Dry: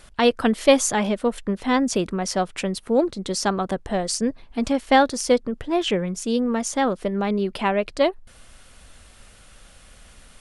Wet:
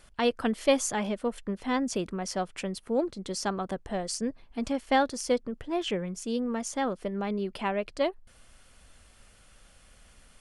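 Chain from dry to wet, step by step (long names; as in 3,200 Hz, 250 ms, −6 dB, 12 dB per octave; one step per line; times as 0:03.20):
notch filter 3,800 Hz, Q 19
level −8 dB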